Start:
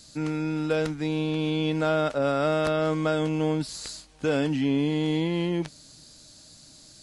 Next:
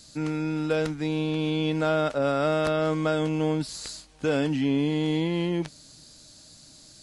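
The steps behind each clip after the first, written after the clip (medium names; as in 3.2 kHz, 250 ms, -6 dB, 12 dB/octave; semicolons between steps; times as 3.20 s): no audible change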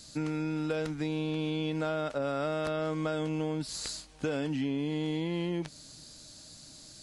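compression, threshold -29 dBFS, peak gain reduction 8.5 dB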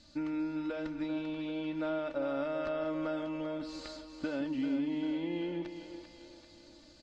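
distance through air 180 m; comb 3.4 ms, depth 67%; two-band feedback delay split 390 Hz, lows 171 ms, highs 392 ms, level -8.5 dB; trim -5 dB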